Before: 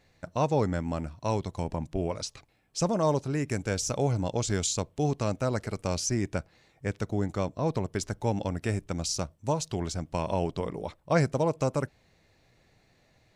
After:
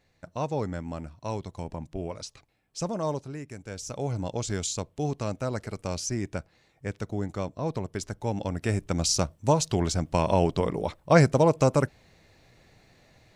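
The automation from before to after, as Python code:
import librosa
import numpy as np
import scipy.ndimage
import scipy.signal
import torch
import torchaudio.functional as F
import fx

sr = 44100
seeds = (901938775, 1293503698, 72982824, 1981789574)

y = fx.gain(x, sr, db=fx.line((3.1, -4.0), (3.55, -11.5), (4.19, -2.0), (8.24, -2.0), (9.07, 6.0)))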